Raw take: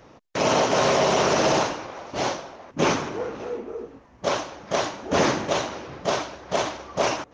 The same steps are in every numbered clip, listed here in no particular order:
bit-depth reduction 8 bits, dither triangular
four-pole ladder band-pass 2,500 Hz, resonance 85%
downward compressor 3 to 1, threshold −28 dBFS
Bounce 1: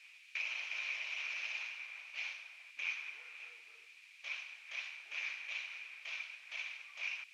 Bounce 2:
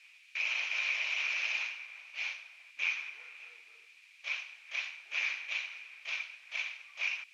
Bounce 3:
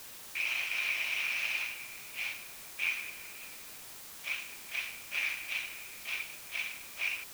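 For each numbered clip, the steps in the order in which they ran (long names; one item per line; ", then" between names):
downward compressor, then bit-depth reduction, then four-pole ladder band-pass
bit-depth reduction, then four-pole ladder band-pass, then downward compressor
four-pole ladder band-pass, then downward compressor, then bit-depth reduction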